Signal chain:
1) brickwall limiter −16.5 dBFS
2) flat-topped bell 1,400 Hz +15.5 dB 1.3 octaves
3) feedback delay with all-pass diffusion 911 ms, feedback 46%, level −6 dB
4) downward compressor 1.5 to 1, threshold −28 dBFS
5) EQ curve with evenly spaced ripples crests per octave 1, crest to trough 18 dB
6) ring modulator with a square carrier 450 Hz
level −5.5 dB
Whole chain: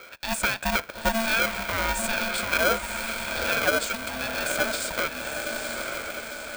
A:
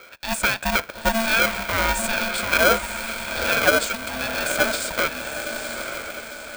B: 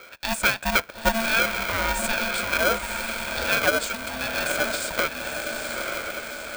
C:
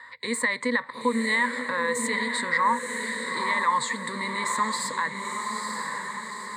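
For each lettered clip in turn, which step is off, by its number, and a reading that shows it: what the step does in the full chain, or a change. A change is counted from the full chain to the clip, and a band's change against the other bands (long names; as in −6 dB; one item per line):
4, average gain reduction 3.0 dB
1, change in integrated loudness +1.5 LU
6, 1 kHz band +6.5 dB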